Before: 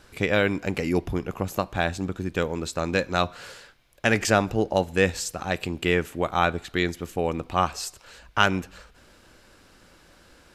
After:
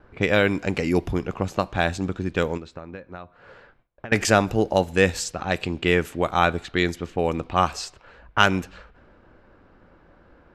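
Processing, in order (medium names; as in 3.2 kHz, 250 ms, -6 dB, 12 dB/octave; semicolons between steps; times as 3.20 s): 2.57–4.12 s: compression 16:1, threshold -36 dBFS, peak gain reduction 20 dB; level-controlled noise filter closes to 1.2 kHz, open at -21 dBFS; gate with hold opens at -52 dBFS; trim +2.5 dB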